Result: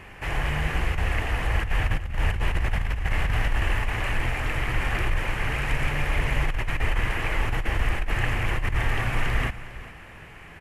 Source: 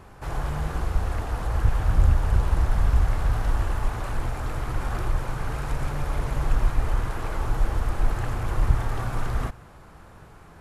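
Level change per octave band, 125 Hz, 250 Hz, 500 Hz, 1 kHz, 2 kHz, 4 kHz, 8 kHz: -1.5 dB, +0.5 dB, +1.0 dB, +1.0 dB, +10.5 dB, +9.0 dB, n/a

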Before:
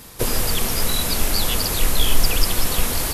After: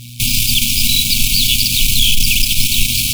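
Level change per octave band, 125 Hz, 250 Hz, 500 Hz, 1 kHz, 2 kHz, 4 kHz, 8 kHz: +5.0 dB, +2.5 dB, under -35 dB, under -40 dB, +8.5 dB, +11.5 dB, +8.0 dB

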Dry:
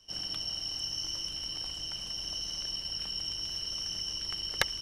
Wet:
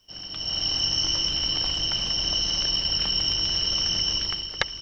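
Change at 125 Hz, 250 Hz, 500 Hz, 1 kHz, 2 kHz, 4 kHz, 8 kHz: +12.5, +12.5, +9.0, +8.5, +5.5, +11.0, +8.0 dB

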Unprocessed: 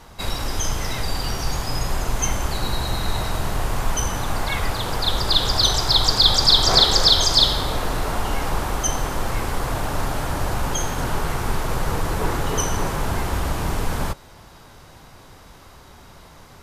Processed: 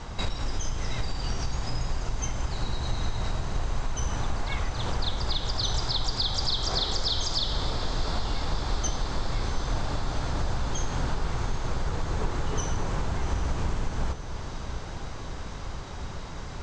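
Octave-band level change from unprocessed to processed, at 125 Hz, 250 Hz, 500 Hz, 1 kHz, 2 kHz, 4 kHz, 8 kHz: -4.5, -7.0, -8.5, -9.5, -9.0, -12.5, -11.0 dB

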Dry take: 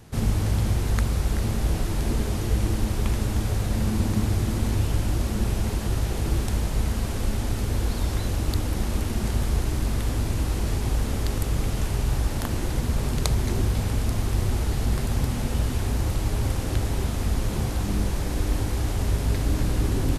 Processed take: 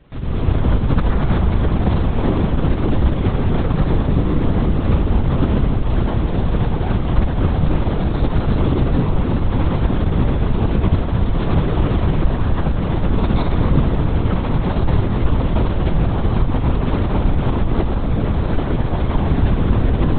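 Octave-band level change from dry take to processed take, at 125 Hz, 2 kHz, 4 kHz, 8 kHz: +7.5 dB, +5.0 dB, +0.5 dB, under -40 dB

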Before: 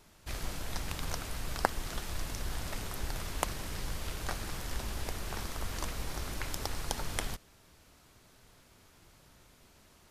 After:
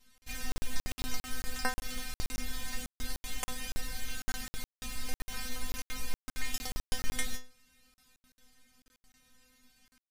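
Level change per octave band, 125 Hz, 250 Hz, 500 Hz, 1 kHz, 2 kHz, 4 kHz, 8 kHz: -6.0, -1.5, -7.5, -5.5, +1.0, +0.5, +1.0 dB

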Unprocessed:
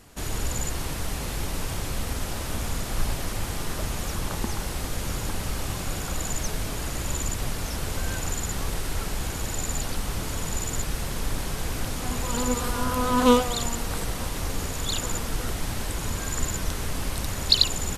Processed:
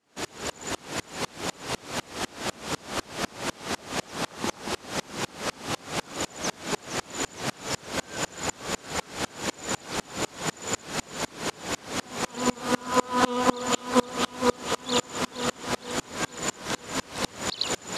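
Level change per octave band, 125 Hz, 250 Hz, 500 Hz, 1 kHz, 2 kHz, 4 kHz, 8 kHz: -10.5, -1.0, +1.0, +2.0, +2.5, -2.5, -2.0 dB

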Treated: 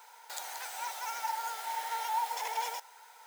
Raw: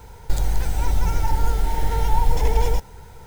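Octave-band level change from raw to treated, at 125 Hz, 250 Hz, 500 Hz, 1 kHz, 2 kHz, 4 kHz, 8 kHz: under -40 dB, under -35 dB, -19.0 dB, -5.0 dB, -4.0 dB, -4.0 dB, -4.0 dB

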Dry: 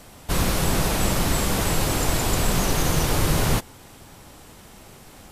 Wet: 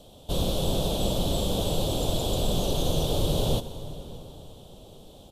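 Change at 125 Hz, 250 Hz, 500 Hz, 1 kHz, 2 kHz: -4.0, -4.0, -0.5, -8.0, -18.0 dB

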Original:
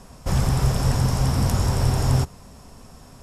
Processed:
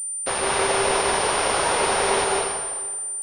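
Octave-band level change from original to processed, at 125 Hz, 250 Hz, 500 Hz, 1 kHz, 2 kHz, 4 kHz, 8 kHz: -21.5, -6.0, +9.5, +9.5, +12.5, +7.5, +12.0 dB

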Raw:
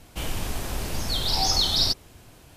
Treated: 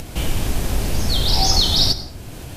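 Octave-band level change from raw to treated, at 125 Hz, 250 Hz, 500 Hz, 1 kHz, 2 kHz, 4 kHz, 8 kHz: +10.0, +9.0, +7.0, +4.5, +5.0, +5.0, +5.0 dB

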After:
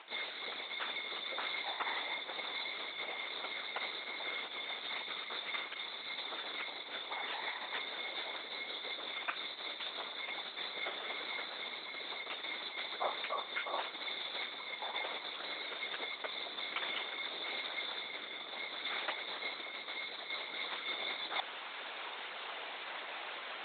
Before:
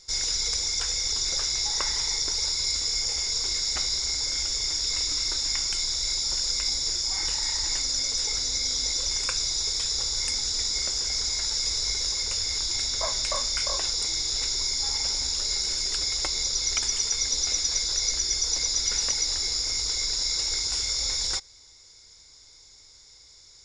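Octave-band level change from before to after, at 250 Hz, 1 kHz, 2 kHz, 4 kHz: -6.0, 0.0, -0.5, -14.5 dB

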